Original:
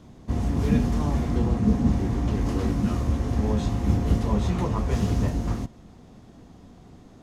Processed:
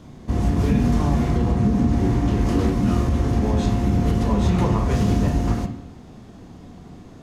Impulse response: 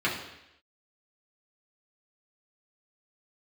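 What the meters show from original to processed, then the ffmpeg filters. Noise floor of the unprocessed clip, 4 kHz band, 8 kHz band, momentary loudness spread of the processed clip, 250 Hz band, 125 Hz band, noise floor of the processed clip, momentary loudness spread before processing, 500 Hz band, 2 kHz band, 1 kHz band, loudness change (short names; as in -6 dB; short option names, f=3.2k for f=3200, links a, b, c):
-49 dBFS, +4.5 dB, +4.0 dB, 4 LU, +4.5 dB, +4.5 dB, -43 dBFS, 5 LU, +5.0 dB, +5.0 dB, +5.5 dB, +4.5 dB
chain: -filter_complex "[0:a]alimiter=limit=-16.5dB:level=0:latency=1:release=91,asplit=2[a][b];[1:a]atrim=start_sample=2205,adelay=30[c];[b][c]afir=irnorm=-1:irlink=0,volume=-16dB[d];[a][d]amix=inputs=2:normalize=0,volume=5dB"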